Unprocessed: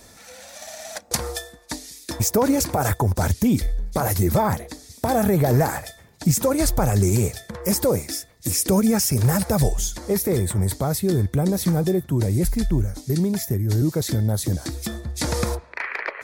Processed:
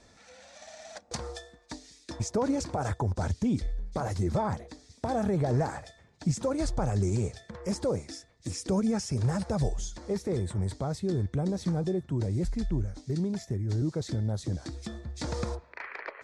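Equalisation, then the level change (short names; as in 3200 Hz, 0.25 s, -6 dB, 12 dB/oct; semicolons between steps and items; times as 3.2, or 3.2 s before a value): LPF 8900 Hz 24 dB/oct; dynamic EQ 2200 Hz, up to -4 dB, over -42 dBFS, Q 1.3; air absorption 65 m; -8.5 dB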